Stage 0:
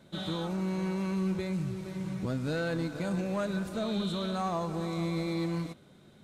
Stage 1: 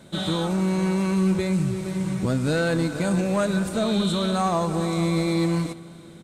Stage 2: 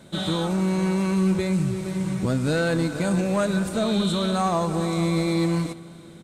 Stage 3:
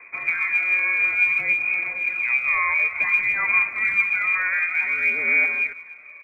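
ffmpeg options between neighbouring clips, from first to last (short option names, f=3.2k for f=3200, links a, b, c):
-af "equalizer=f=8.5k:w=2.2:g=8.5,aecho=1:1:341|682|1023|1364:0.0708|0.0375|0.0199|0.0105,volume=9dB"
-af anull
-af "lowpass=f=2.2k:t=q:w=0.5098,lowpass=f=2.2k:t=q:w=0.6013,lowpass=f=2.2k:t=q:w=0.9,lowpass=f=2.2k:t=q:w=2.563,afreqshift=-2600,aphaser=in_gain=1:out_gain=1:delay=1.8:decay=0.46:speed=0.56:type=sinusoidal"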